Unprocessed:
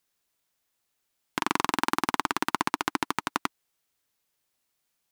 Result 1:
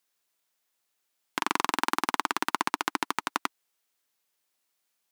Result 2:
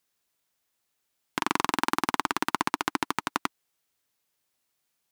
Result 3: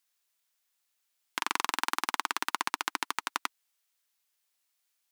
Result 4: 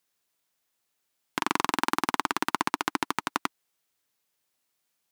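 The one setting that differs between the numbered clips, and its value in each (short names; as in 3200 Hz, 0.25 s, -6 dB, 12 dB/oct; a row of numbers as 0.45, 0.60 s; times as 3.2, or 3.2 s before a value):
HPF, cutoff: 340, 42, 1400, 110 Hz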